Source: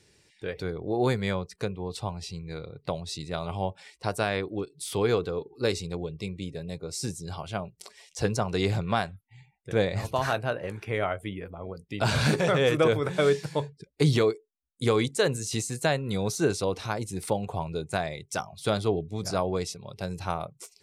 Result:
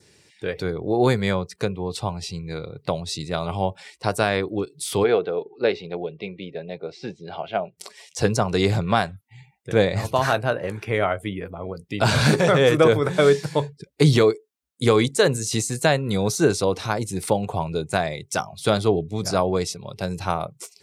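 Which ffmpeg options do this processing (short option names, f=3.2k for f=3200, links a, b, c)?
-filter_complex "[0:a]asplit=3[a][b][c];[a]afade=t=out:st=5.03:d=0.02[d];[b]highpass=250,equalizer=f=280:t=q:w=4:g=-5,equalizer=f=680:t=q:w=4:g=6,equalizer=f=1.1k:t=q:w=4:g=-7,lowpass=f=3.3k:w=0.5412,lowpass=f=3.3k:w=1.3066,afade=t=in:st=5.03:d=0.02,afade=t=out:st=7.76:d=0.02[e];[c]afade=t=in:st=7.76:d=0.02[f];[d][e][f]amix=inputs=3:normalize=0,highpass=80,adynamicequalizer=threshold=0.00447:dfrequency=2700:dqfactor=2.6:tfrequency=2700:tqfactor=2.6:attack=5:release=100:ratio=0.375:range=2:mode=cutabove:tftype=bell,volume=6.5dB"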